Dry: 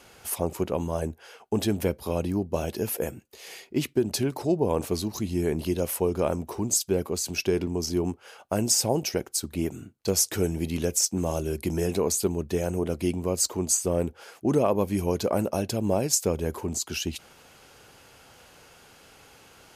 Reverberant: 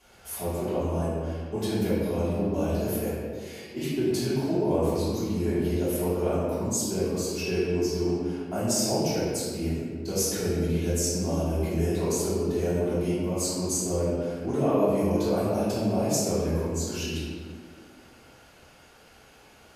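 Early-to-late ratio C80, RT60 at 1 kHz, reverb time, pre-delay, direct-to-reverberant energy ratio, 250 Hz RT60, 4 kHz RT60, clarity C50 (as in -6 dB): -0.5 dB, 1.5 s, 1.8 s, 3 ms, -12.5 dB, 2.4 s, 1.1 s, -2.5 dB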